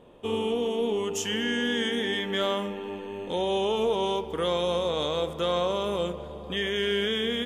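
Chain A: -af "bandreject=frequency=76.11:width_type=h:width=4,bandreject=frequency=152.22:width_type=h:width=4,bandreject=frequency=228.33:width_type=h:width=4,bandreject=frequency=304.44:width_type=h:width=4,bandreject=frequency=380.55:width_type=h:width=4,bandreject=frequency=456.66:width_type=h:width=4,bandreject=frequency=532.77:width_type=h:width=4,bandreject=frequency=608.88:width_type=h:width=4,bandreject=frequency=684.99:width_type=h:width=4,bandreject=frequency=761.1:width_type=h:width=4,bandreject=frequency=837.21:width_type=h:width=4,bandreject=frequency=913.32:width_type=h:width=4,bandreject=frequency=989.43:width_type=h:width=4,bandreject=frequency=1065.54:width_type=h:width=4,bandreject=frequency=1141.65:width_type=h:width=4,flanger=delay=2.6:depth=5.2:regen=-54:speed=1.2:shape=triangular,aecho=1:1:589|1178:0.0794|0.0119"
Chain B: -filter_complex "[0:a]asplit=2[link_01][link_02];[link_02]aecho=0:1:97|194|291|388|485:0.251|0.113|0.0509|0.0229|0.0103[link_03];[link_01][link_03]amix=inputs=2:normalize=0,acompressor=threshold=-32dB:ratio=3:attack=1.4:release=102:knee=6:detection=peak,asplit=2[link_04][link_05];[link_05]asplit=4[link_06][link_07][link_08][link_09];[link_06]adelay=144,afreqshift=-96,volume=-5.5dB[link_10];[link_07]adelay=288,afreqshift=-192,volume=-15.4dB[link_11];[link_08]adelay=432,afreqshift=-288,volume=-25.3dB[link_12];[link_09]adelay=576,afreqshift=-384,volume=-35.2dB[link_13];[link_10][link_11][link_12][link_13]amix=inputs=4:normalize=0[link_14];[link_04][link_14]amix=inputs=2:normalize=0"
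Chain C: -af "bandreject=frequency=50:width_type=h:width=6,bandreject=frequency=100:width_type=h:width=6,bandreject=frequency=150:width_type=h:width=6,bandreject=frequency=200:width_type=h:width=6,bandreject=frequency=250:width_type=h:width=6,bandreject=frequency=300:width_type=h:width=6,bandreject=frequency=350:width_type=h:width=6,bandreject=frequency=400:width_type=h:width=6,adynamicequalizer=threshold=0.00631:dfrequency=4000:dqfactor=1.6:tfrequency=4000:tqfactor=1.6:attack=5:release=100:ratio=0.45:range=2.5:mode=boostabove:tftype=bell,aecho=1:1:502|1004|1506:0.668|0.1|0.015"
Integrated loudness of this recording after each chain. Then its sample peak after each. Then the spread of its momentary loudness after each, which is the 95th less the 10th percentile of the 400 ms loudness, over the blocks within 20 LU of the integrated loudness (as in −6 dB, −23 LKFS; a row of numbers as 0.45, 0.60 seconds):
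−32.0, −33.5, −26.0 LKFS; −19.0, −21.0, −11.5 dBFS; 7, 4, 5 LU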